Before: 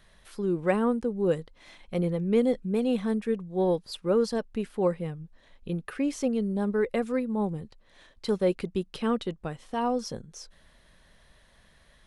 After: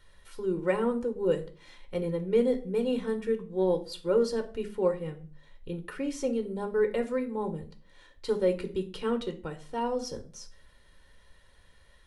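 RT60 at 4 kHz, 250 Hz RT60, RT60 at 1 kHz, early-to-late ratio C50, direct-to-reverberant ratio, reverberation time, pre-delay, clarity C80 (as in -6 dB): 0.30 s, 0.55 s, 0.35 s, 14.0 dB, 5.5 dB, 0.40 s, 3 ms, 19.5 dB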